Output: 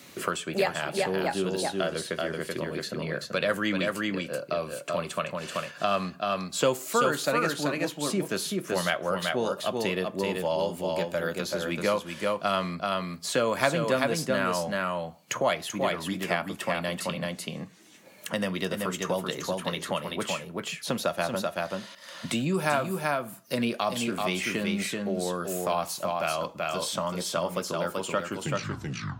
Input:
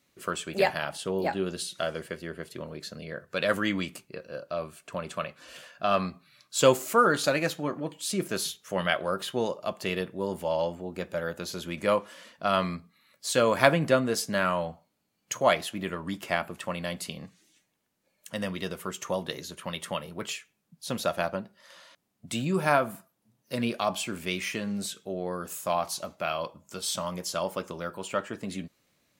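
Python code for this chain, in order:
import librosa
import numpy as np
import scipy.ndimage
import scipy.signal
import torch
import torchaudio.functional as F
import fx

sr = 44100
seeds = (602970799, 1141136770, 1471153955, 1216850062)

y = fx.tape_stop_end(x, sr, length_s=0.97)
y = scipy.signal.sosfilt(scipy.signal.butter(2, 100.0, 'highpass', fs=sr, output='sos'), y)
y = y + 10.0 ** (-4.5 / 20.0) * np.pad(y, (int(383 * sr / 1000.0), 0))[:len(y)]
y = fx.band_squash(y, sr, depth_pct=70)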